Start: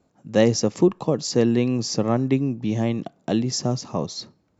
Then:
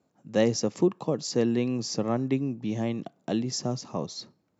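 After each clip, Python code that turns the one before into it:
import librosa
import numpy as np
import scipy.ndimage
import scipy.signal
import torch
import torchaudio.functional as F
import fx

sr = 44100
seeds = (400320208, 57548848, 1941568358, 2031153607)

y = scipy.signal.sosfilt(scipy.signal.butter(2, 110.0, 'highpass', fs=sr, output='sos'), x)
y = y * 10.0 ** (-5.5 / 20.0)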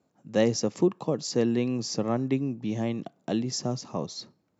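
y = x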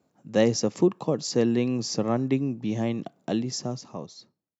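y = fx.fade_out_tail(x, sr, length_s=1.38)
y = y * 10.0 ** (2.0 / 20.0)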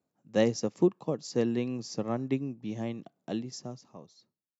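y = fx.upward_expand(x, sr, threshold_db=-37.0, expansion=1.5)
y = y * 10.0 ** (-2.5 / 20.0)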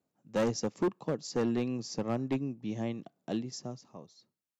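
y = np.clip(10.0 ** (24.0 / 20.0) * x, -1.0, 1.0) / 10.0 ** (24.0 / 20.0)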